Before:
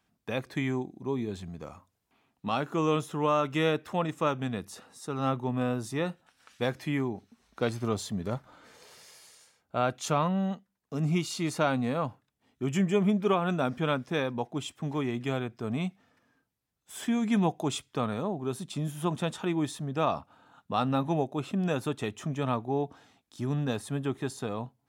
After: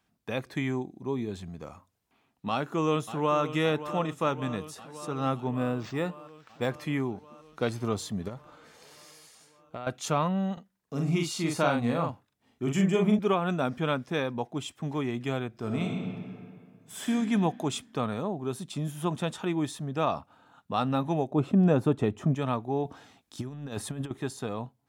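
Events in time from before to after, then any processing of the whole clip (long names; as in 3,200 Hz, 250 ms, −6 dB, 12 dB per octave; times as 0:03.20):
0:02.50–0:03.42: delay throw 570 ms, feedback 75%, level −12.5 dB
0:05.54–0:06.74: linearly interpolated sample-rate reduction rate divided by 4×
0:08.28–0:09.87: downward compressor 10 to 1, threshold −33 dBFS
0:10.53–0:13.19: double-tracking delay 42 ms −3.5 dB
0:15.49–0:17.09: thrown reverb, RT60 2.2 s, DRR 0 dB
0:21.31–0:22.35: tilt shelving filter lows +8 dB, about 1,400 Hz
0:22.85–0:24.11: compressor whose output falls as the input rises −34 dBFS, ratio −0.5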